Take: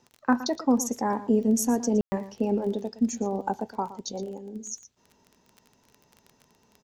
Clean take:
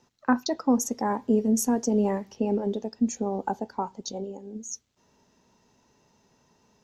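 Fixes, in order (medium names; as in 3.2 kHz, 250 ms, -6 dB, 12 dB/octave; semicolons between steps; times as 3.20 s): de-click; room tone fill 2.01–2.12 s; inverse comb 116 ms -15 dB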